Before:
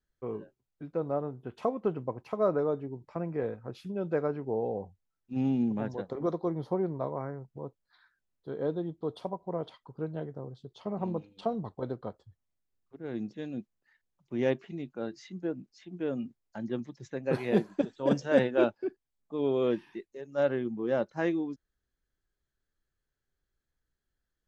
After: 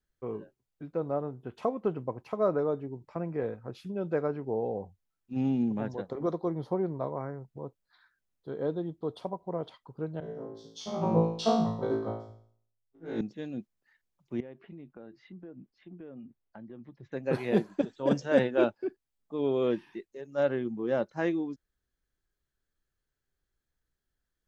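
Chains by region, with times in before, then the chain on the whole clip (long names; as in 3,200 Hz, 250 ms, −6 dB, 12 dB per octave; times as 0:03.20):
0:10.20–0:13.21: parametric band 5,800 Hz +11 dB 0.55 octaves + flutter between parallel walls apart 3.1 metres, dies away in 0.89 s + multiband upward and downward expander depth 100%
0:14.40–0:17.12: downward compressor, threshold −42 dBFS + high-frequency loss of the air 380 metres
whole clip: no processing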